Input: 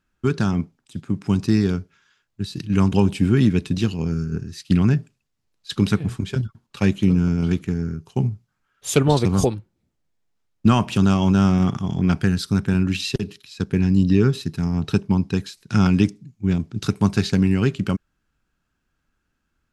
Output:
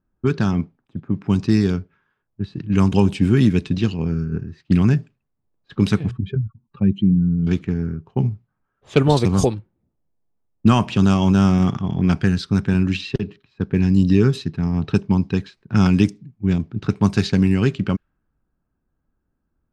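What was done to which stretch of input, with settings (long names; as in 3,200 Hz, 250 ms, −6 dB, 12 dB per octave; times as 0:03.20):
0:06.11–0:07.47: expanding power law on the bin magnitudes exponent 1.8
whole clip: notch filter 1,400 Hz, Q 26; low-pass that shuts in the quiet parts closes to 830 Hz, open at −12.5 dBFS; level +1.5 dB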